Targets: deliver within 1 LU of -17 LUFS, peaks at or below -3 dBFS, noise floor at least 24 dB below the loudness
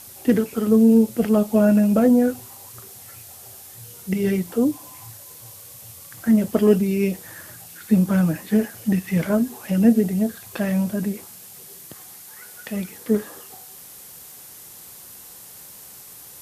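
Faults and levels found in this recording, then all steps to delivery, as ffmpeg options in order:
noise floor -43 dBFS; noise floor target -44 dBFS; loudness -20.0 LUFS; peak -4.5 dBFS; loudness target -17.0 LUFS
-> -af "afftdn=nr=6:nf=-43"
-af "volume=3dB,alimiter=limit=-3dB:level=0:latency=1"

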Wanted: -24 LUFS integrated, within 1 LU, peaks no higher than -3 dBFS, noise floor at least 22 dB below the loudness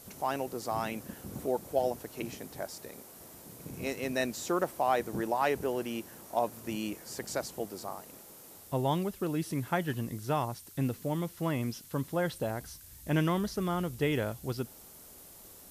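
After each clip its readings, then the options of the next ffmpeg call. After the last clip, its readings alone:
noise floor -52 dBFS; noise floor target -56 dBFS; loudness -33.5 LUFS; peak -15.5 dBFS; loudness target -24.0 LUFS
-> -af "afftdn=nr=6:nf=-52"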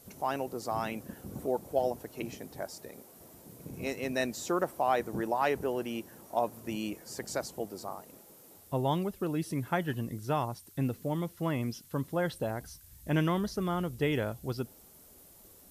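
noise floor -56 dBFS; loudness -34.0 LUFS; peak -15.5 dBFS; loudness target -24.0 LUFS
-> -af "volume=10dB"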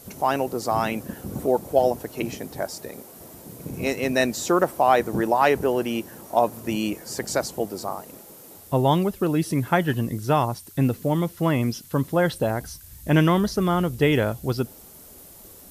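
loudness -24.0 LUFS; peak -5.5 dBFS; noise floor -46 dBFS

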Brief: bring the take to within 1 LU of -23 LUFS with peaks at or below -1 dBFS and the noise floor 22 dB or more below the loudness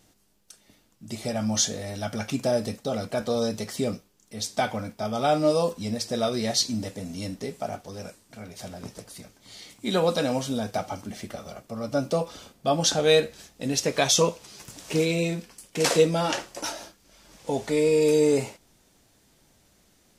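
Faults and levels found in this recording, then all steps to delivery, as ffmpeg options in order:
loudness -26.0 LUFS; peak -7.0 dBFS; loudness target -23.0 LUFS
-> -af "volume=3dB"

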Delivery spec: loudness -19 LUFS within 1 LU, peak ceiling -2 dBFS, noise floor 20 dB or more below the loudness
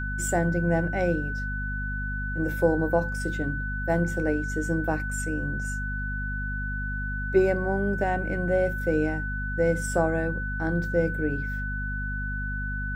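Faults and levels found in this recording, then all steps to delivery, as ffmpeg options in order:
hum 50 Hz; harmonics up to 250 Hz; hum level -29 dBFS; steady tone 1500 Hz; tone level -32 dBFS; loudness -27.5 LUFS; peak -8.5 dBFS; loudness target -19.0 LUFS
-> -af "bandreject=f=50:t=h:w=6,bandreject=f=100:t=h:w=6,bandreject=f=150:t=h:w=6,bandreject=f=200:t=h:w=6,bandreject=f=250:t=h:w=6"
-af "bandreject=f=1.5k:w=30"
-af "volume=8.5dB,alimiter=limit=-2dB:level=0:latency=1"

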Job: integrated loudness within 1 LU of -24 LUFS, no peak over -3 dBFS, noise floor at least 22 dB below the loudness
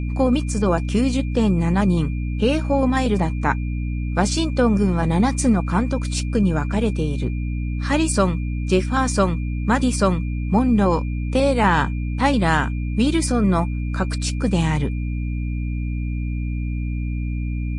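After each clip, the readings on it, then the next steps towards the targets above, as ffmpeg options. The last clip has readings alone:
hum 60 Hz; harmonics up to 300 Hz; hum level -22 dBFS; steady tone 2400 Hz; tone level -42 dBFS; loudness -21.0 LUFS; peak -4.0 dBFS; loudness target -24.0 LUFS
-> -af "bandreject=f=60:t=h:w=6,bandreject=f=120:t=h:w=6,bandreject=f=180:t=h:w=6,bandreject=f=240:t=h:w=6,bandreject=f=300:t=h:w=6"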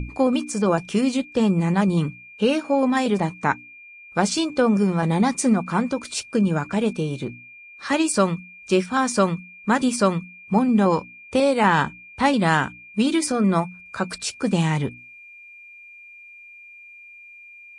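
hum none; steady tone 2400 Hz; tone level -42 dBFS
-> -af "bandreject=f=2.4k:w=30"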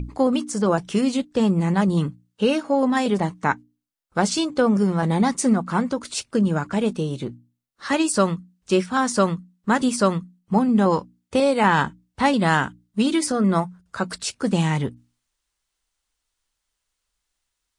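steady tone none; loudness -22.0 LUFS; peak -5.5 dBFS; loudness target -24.0 LUFS
-> -af "volume=-2dB"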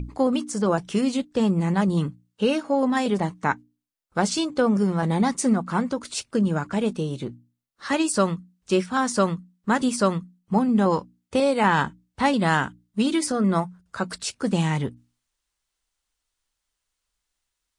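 loudness -24.0 LUFS; peak -7.5 dBFS; noise floor -81 dBFS

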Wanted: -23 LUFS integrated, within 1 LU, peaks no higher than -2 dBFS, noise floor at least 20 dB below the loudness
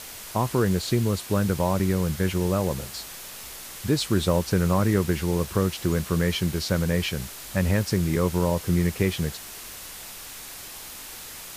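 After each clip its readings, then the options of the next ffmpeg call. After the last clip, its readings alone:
noise floor -40 dBFS; noise floor target -45 dBFS; loudness -25.0 LUFS; peak -7.5 dBFS; loudness target -23.0 LUFS
-> -af "afftdn=nr=6:nf=-40"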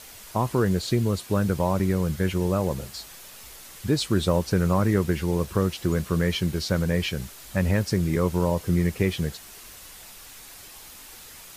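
noise floor -45 dBFS; loudness -25.0 LUFS; peak -7.5 dBFS; loudness target -23.0 LUFS
-> -af "volume=2dB"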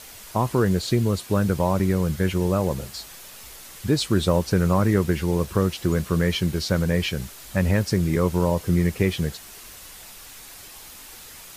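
loudness -23.0 LUFS; peak -5.5 dBFS; noise floor -43 dBFS

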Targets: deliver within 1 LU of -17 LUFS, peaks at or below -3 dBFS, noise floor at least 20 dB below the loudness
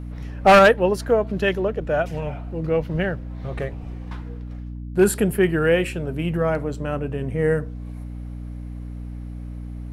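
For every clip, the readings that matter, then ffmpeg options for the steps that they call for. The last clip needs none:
hum 60 Hz; harmonics up to 300 Hz; hum level -30 dBFS; loudness -21.0 LUFS; peak -5.0 dBFS; loudness target -17.0 LUFS
-> -af "bandreject=f=60:t=h:w=6,bandreject=f=120:t=h:w=6,bandreject=f=180:t=h:w=6,bandreject=f=240:t=h:w=6,bandreject=f=300:t=h:w=6"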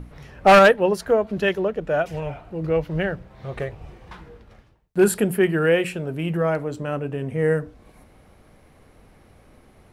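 hum none; loudness -21.0 LUFS; peak -5.0 dBFS; loudness target -17.0 LUFS
-> -af "volume=4dB,alimiter=limit=-3dB:level=0:latency=1"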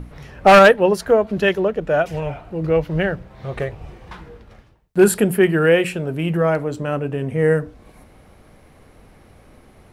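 loudness -17.5 LUFS; peak -3.0 dBFS; noise floor -50 dBFS

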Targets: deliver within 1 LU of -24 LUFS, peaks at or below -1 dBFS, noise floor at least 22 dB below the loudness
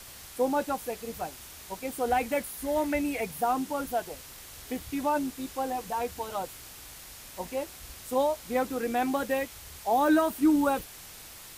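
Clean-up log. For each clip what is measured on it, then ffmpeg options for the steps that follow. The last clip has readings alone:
noise floor -47 dBFS; noise floor target -52 dBFS; loudness -29.5 LUFS; peak -14.0 dBFS; loudness target -24.0 LUFS
-> -af "afftdn=nr=6:nf=-47"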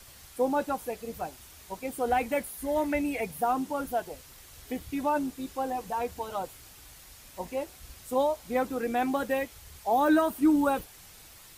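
noise floor -52 dBFS; loudness -29.5 LUFS; peak -14.5 dBFS; loudness target -24.0 LUFS
-> -af "volume=5.5dB"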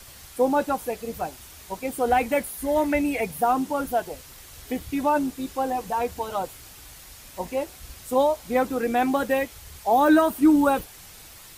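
loudness -24.0 LUFS; peak -9.0 dBFS; noise floor -46 dBFS

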